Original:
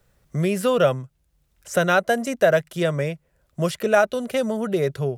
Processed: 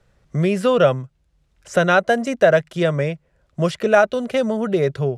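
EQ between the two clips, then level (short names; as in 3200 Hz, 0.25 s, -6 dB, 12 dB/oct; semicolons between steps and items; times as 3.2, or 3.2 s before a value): air absorption 70 m; +3.5 dB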